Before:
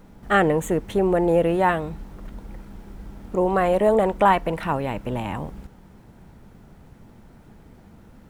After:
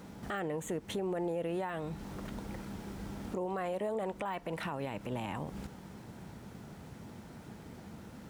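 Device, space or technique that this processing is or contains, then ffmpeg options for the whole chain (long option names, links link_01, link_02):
broadcast voice chain: -af "highpass=88,deesser=0.65,acompressor=threshold=-34dB:ratio=4,equalizer=frequency=5800:width_type=o:width=2.1:gain=5,alimiter=level_in=4.5dB:limit=-24dB:level=0:latency=1:release=73,volume=-4.5dB,volume=1dB"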